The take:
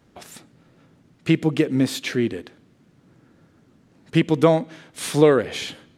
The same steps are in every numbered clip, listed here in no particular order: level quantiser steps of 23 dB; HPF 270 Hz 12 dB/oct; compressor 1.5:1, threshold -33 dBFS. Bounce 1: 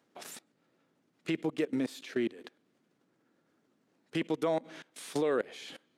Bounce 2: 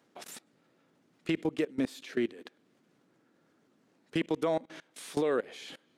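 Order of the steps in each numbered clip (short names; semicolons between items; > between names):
level quantiser > HPF > compressor; HPF > level quantiser > compressor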